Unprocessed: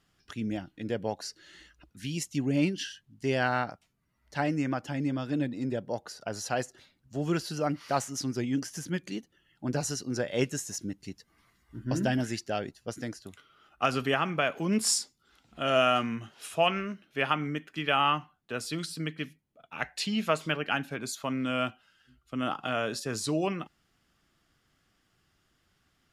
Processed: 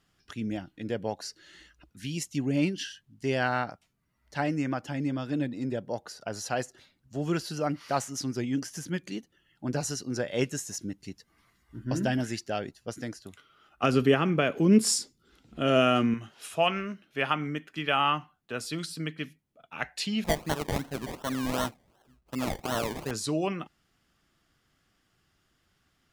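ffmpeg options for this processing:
ffmpeg -i in.wav -filter_complex "[0:a]asettb=1/sr,asplit=3[link_01][link_02][link_03];[link_01]atrim=end=13.834[link_04];[link_02]atrim=start=13.83:end=16.14,asetpts=PTS-STARTPTS,afade=type=in:duration=0.004:curve=qsin,afade=type=out:start_time=2.306:duration=0.004:curve=qsin,lowshelf=frequency=560:width_type=q:width=1.5:gain=7[link_05];[link_03]atrim=start=16.136[link_06];[link_04][link_05]acrossfade=duration=0.004:curve1=hsin:curve2=qsin[link_07];[link_07][link_06]acrossfade=duration=0.004:curve1=qsin:curve2=hsin,asettb=1/sr,asplit=3[link_08][link_09][link_10];[link_08]atrim=end=20.244[link_11];[link_09]atrim=start=20.24:end=23.11,asetpts=PTS-STARTPTS,afade=type=in:duration=0.004:curve=qsin,afade=type=out:start_time=2.866:duration=0.004:curve=qsin,acrusher=samples=26:mix=1:aa=0.000001:lfo=1:lforange=15.6:lforate=2.7[link_12];[link_10]atrim=start=23.106[link_13];[link_11][link_12]acrossfade=duration=0.004:curve1=hsin:curve2=qsin[link_14];[link_14][link_13]acrossfade=duration=0.004:curve1=qsin:curve2=hsin" out.wav

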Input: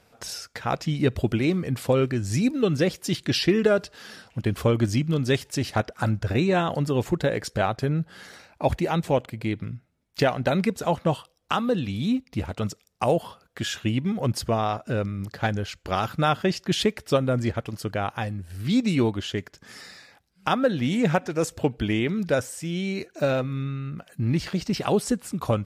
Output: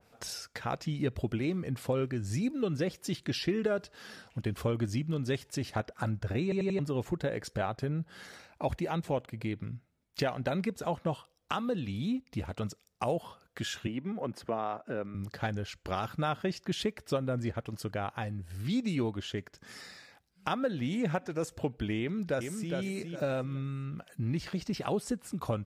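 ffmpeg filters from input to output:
ffmpeg -i in.wav -filter_complex "[0:a]asettb=1/sr,asplit=3[link_01][link_02][link_03];[link_01]atrim=end=13.874[link_04];[link_02]atrim=start=13.87:end=15.15,asetpts=PTS-STARTPTS,afade=type=in:duration=0.004:curve=qsin,afade=type=out:start_time=1.276:duration=0.004:curve=qsin,acrossover=split=190 2600:gain=0.141 1 0.251[link_05][link_06][link_07];[link_05][link_06][link_07]amix=inputs=3:normalize=0[link_08];[link_03]atrim=start=15.146[link_09];[link_04][link_08]acrossfade=duration=0.004:curve1=hsin:curve2=qsin[link_10];[link_10][link_09]acrossfade=duration=0.004:curve1=qsin:curve2=hsin,asplit=2[link_11][link_12];[link_12]afade=type=in:start_time=21.99:duration=0.01,afade=type=out:start_time=22.74:duration=0.01,aecho=0:1:410|820|1230:0.501187|0.125297|0.0313242[link_13];[link_11][link_13]amix=inputs=2:normalize=0,asplit=5[link_14][link_15][link_16][link_17][link_18];[link_14]atrim=end=6.522[link_19];[link_15]atrim=start=6.428:end=6.522[link_20];[link_16]atrim=start=6.428:end=6.522[link_21];[link_17]atrim=start=6.428:end=6.522[link_22];[link_18]atrim=start=6.788[link_23];[link_19][link_20]acrossfade=duration=0.004:curve1=hsin:curve2=hsin[link_24];[link_24][link_21]acrossfade=duration=0.004:curve1=hsin:curve2=hsin[link_25];[link_25][link_22]acrossfade=duration=0.004:curve1=hsin:curve2=hsin[link_26];[link_26][link_23]acrossfade=duration=0.004:curve1=hsin:curve2=hsin,acompressor=threshold=-32dB:ratio=1.5,adynamicequalizer=threshold=0.00501:dfrequency=2100:dqfactor=0.7:tfrequency=2100:tqfactor=0.7:attack=5:release=100:ratio=0.375:range=1.5:mode=cutabove:tftype=highshelf,volume=-4dB" out.wav

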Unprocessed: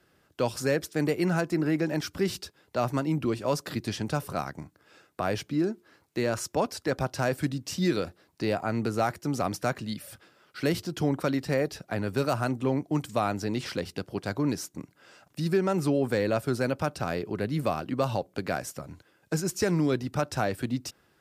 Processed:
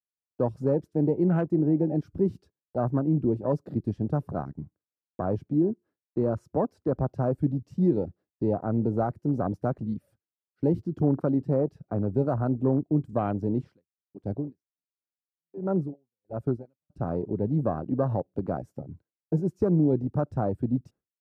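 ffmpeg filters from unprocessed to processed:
ffmpeg -i in.wav -filter_complex "[0:a]asettb=1/sr,asplit=3[link_01][link_02][link_03];[link_01]atrim=end=13.604[link_04];[link_02]atrim=start=13.6:end=16.9,asetpts=PTS-STARTPTS,afade=type=in:duration=0.004:curve=qsin,afade=type=out:start_time=3.296:duration=0.004:curve=qsin,aeval=exprs='val(0)*pow(10,-35*(0.5-0.5*cos(2*PI*1.4*n/s))/20)':channel_layout=same[link_05];[link_03]atrim=start=16.896[link_06];[link_04][link_05]acrossfade=duration=0.004:curve1=hsin:curve2=qsin[link_07];[link_07][link_06]acrossfade=duration=0.004:curve1=qsin:curve2=hsin,afwtdn=0.0282,agate=range=-33dB:threshold=-50dB:ratio=3:detection=peak,tiltshelf=frequency=1200:gain=10,volume=-5.5dB" out.wav

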